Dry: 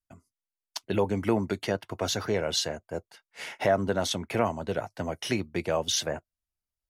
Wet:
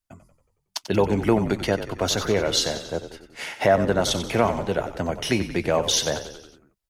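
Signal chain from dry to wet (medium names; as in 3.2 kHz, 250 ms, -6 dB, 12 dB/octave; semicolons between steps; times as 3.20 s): frequency-shifting echo 92 ms, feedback 57%, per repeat -47 Hz, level -11 dB; trim +5.5 dB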